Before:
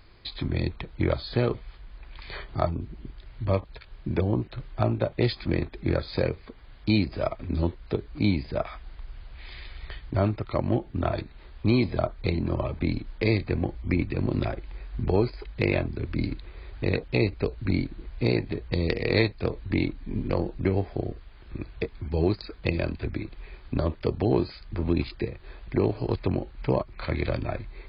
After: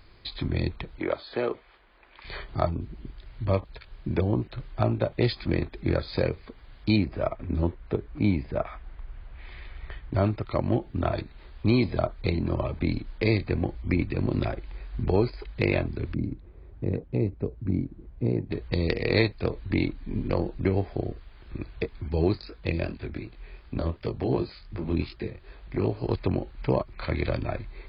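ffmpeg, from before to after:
ffmpeg -i in.wav -filter_complex "[0:a]asettb=1/sr,asplit=3[link_01][link_02][link_03];[link_01]atrim=end=0.994[link_04];[link_02]atrim=start=0.99:end=2.25,asetpts=PTS-STARTPTS,afade=type=in:duration=0.004:curve=qsin,afade=type=out:start_time=1.256:duration=0.004:curve=qsin,acrossover=split=270 3400:gain=0.0891 1 0.224[link_05][link_06][link_07];[link_05][link_06][link_07]amix=inputs=3:normalize=0[link_08];[link_03]atrim=start=2.246[link_09];[link_04][link_08]acrossfade=duration=0.004:curve1=hsin:curve2=qsin[link_10];[link_10][link_09]acrossfade=duration=0.004:curve1=qsin:curve2=hsin,asettb=1/sr,asplit=3[link_11][link_12][link_13];[link_11]atrim=end=6.964[link_14];[link_12]atrim=start=6.96:end=10.12,asetpts=PTS-STARTPTS,afade=type=in:duration=0.004:curve=qsin,afade=type=out:start_time=3.156:duration=0.004:curve=qsin,lowpass=2400[link_15];[link_13]atrim=start=10.116[link_16];[link_14][link_15]acrossfade=duration=0.004:curve1=hsin:curve2=qsin[link_17];[link_17][link_16]acrossfade=duration=0.004:curve1=qsin:curve2=hsin,asplit=3[link_18][link_19][link_20];[link_18]afade=type=out:start_time=16.13:duration=0.02[link_21];[link_19]bandpass=frequency=160:width_type=q:width=0.57,afade=type=in:start_time=16.13:duration=0.02,afade=type=out:start_time=18.5:duration=0.02[link_22];[link_20]afade=type=in:start_time=18.5:duration=0.02[link_23];[link_21][link_22][link_23]amix=inputs=3:normalize=0,asplit=3[link_24][link_25][link_26];[link_24]afade=type=out:start_time=22.34:duration=0.02[link_27];[link_25]flanger=delay=17.5:depth=6.9:speed=2.7,afade=type=in:start_time=22.34:duration=0.02,afade=type=out:start_time=26.02:duration=0.02[link_28];[link_26]afade=type=in:start_time=26.02:duration=0.02[link_29];[link_27][link_28][link_29]amix=inputs=3:normalize=0" out.wav

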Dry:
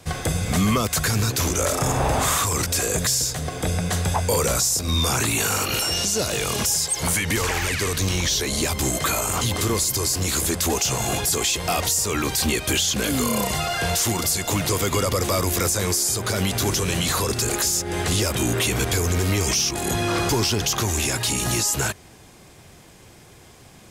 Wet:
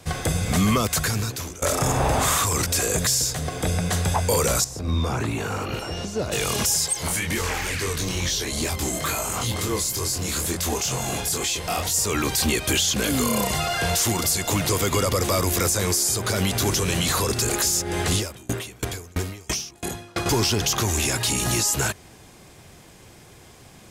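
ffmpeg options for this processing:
ffmpeg -i in.wav -filter_complex "[0:a]asettb=1/sr,asplit=3[link_01][link_02][link_03];[link_01]atrim=end=4.644[link_04];[link_02]atrim=start=4.64:end=6.32,asetpts=PTS-STARTPTS,afade=type=in:duration=0.004:curve=qsin,afade=type=out:start_time=1.676:duration=0.004:curve=qsin,lowpass=frequency=1000:poles=1[link_05];[link_03]atrim=start=6.316[link_06];[link_04][link_05]acrossfade=duration=0.004:curve1=hsin:curve2=qsin[link_07];[link_07][link_06]acrossfade=duration=0.004:curve1=qsin:curve2=hsin,asettb=1/sr,asplit=3[link_08][link_09][link_10];[link_08]atrim=end=6.934[link_11];[link_09]atrim=start=6.93:end=11.94,asetpts=PTS-STARTPTS,afade=type=in:duration=0.004:curve=qsin,afade=type=out:start_time=5.006:duration=0.004:curve=qsin,flanger=delay=22.5:depth=5:speed=2.2[link_12];[link_10]atrim=start=11.936[link_13];[link_11][link_12]acrossfade=duration=0.004:curve1=hsin:curve2=qsin[link_14];[link_14][link_13]acrossfade=duration=0.004:curve1=qsin:curve2=hsin,asettb=1/sr,asplit=3[link_15][link_16][link_17];[link_15]atrim=end=18.164[link_18];[link_16]atrim=start=18.16:end=20.26,asetpts=PTS-STARTPTS,afade=type=in:duration=0.004:curve=qsin,afade=type=out:start_time=2.096:duration=0.004:curve=qsin,aeval=exprs='val(0)*pow(10,-30*if(lt(mod(3*n/s,1),2*abs(3)/1000),1-mod(3*n/s,1)/(2*abs(3)/1000),(mod(3*n/s,1)-2*abs(3)/1000)/(1-2*abs(3)/1000))/20)':channel_layout=same[link_19];[link_17]atrim=start=20.256[link_20];[link_18][link_19]acrossfade=duration=0.004:curve1=hsin:curve2=qsin[link_21];[link_21][link_20]acrossfade=duration=0.004:curve1=qsin:curve2=hsin,asplit=2[link_22][link_23];[link_22]atrim=end=1.62,asetpts=PTS-STARTPTS,afade=type=out:start_time=0.92:duration=0.7:silence=0.0841395[link_24];[link_23]atrim=start=1.62,asetpts=PTS-STARTPTS,afade=type=in:duration=0.004:curve=hsin:silence=0.0841395[link_25];[link_24][link_25]concat=n=2:v=0:a=1" out.wav

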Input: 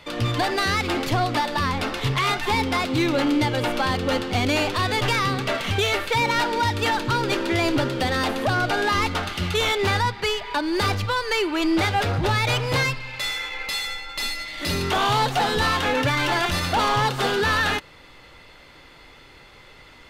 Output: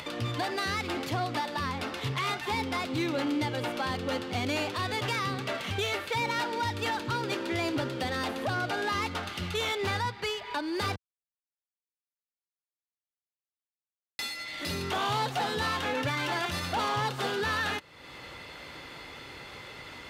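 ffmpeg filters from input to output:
ffmpeg -i in.wav -filter_complex "[0:a]asplit=3[link_01][link_02][link_03];[link_01]atrim=end=10.96,asetpts=PTS-STARTPTS,afade=type=out:start_time=10.956:duration=0.004:curve=hsin[link_04];[link_02]atrim=start=10.96:end=14.19,asetpts=PTS-STARTPTS,volume=0[link_05];[link_03]atrim=start=14.19,asetpts=PTS-STARTPTS,afade=type=in:duration=0.004:curve=hsin[link_06];[link_04][link_05][link_06]concat=n=3:v=0:a=1,acompressor=mode=upward:threshold=-23dB:ratio=2.5,highpass=74,volume=-8.5dB" out.wav

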